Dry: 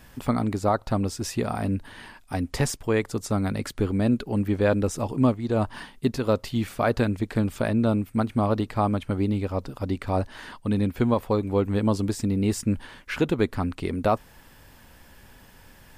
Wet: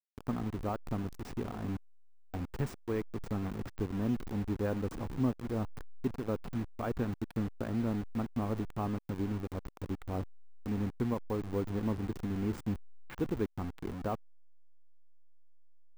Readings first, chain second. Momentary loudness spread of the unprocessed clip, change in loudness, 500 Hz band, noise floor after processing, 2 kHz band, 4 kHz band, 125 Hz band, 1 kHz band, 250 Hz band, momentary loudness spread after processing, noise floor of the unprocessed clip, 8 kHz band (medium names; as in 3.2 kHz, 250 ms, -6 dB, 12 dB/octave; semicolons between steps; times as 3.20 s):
7 LU, -10.5 dB, -12.5 dB, -53 dBFS, -14.0 dB, -16.0 dB, -10.0 dB, -13.0 dB, -10.0 dB, 7 LU, -52 dBFS, under -15 dB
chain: send-on-delta sampling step -25 dBFS; de-esser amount 90%; peaking EQ 600 Hz -6.5 dB 0.35 oct; trim -8.5 dB